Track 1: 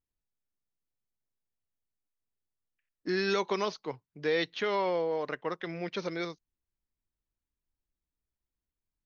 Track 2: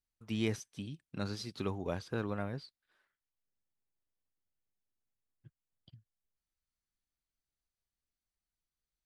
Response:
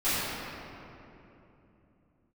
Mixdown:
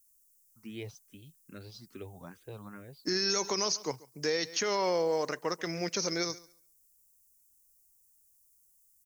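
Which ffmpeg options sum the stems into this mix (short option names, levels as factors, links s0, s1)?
-filter_complex "[0:a]aexciter=amount=15.2:drive=7.6:freq=5500,volume=1.26,asplit=2[s0][s1];[s1]volume=0.0794[s2];[1:a]asplit=2[s3][s4];[s4]afreqshift=2.4[s5];[s3][s5]amix=inputs=2:normalize=1,adelay=350,volume=0.501[s6];[s2]aecho=0:1:138|276|414:1|0.17|0.0289[s7];[s0][s6][s7]amix=inputs=3:normalize=0,alimiter=limit=0.1:level=0:latency=1:release=47"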